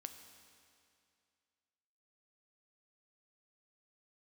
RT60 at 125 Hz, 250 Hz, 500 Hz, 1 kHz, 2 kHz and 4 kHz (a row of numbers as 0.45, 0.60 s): 2.4, 2.4, 2.4, 2.4, 2.4, 2.3 s